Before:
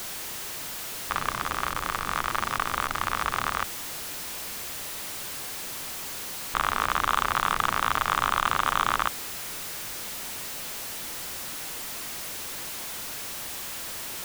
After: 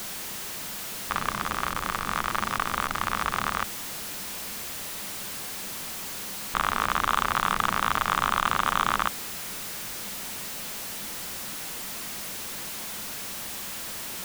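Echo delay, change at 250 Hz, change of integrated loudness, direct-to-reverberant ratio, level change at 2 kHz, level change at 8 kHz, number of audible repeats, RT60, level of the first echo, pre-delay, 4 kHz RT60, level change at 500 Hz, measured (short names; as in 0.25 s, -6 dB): none, +3.5 dB, 0.0 dB, none, 0.0 dB, 0.0 dB, none, none, none, none, none, 0.0 dB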